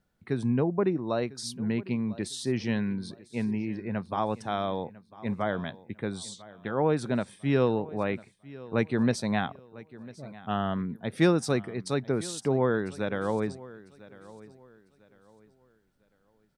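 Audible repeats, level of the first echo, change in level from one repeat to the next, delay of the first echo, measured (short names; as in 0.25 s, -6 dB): 2, -19.5 dB, -10.0 dB, 0.999 s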